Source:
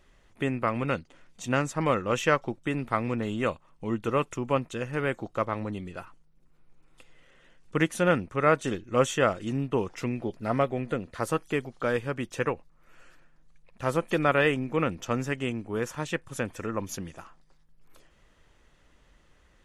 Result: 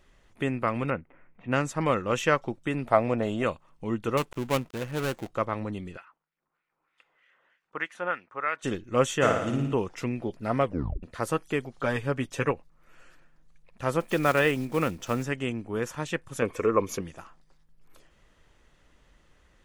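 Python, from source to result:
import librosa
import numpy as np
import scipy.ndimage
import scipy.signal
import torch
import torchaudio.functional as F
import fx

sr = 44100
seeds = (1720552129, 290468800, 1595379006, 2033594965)

y = fx.cheby1_lowpass(x, sr, hz=2300.0, order=4, at=(0.9, 1.52))
y = fx.peak_eq(y, sr, hz=640.0, db=13.0, octaves=0.68, at=(2.86, 3.43))
y = fx.dead_time(y, sr, dead_ms=0.25, at=(4.17, 5.31))
y = fx.filter_lfo_bandpass(y, sr, shape='sine', hz=3.2, low_hz=910.0, high_hz=2200.0, q=1.7, at=(5.96, 8.62), fade=0.02)
y = fx.room_flutter(y, sr, wall_m=9.7, rt60_s=0.79, at=(9.21, 9.73), fade=0.02)
y = fx.comb(y, sr, ms=7.2, depth=0.64, at=(11.77, 12.52))
y = fx.block_float(y, sr, bits=5, at=(14.0, 15.25))
y = fx.small_body(y, sr, hz=(440.0, 1100.0, 2200.0), ring_ms=20, db=13, at=(16.42, 17.01))
y = fx.edit(y, sr, fx.tape_stop(start_s=10.63, length_s=0.4), tone=tone)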